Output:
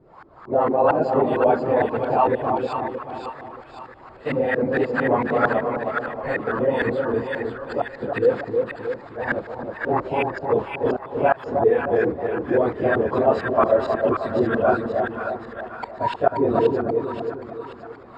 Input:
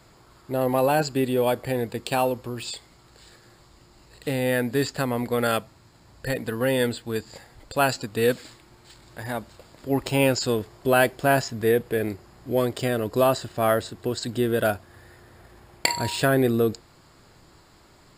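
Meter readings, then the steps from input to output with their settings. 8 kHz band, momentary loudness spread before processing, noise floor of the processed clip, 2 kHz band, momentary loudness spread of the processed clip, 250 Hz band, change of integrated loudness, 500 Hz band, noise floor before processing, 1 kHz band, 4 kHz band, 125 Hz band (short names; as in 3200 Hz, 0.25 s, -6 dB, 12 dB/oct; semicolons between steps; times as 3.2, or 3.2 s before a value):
under -25 dB, 12 LU, -43 dBFS, +2.0 dB, 14 LU, +1.0 dB, +2.5 dB, +4.5 dB, -55 dBFS, +5.5 dB, under -10 dB, -3.0 dB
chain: phase scrambler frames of 50 ms; tilt shelf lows -9.5 dB, about 790 Hz; flipped gate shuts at -7 dBFS, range -34 dB; in parallel at -2.5 dB: negative-ratio compressor -29 dBFS; on the sum: LFO low-pass saw up 4.4 Hz 290–1500 Hz; on a send: split-band echo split 980 Hz, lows 0.313 s, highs 0.53 s, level -4 dB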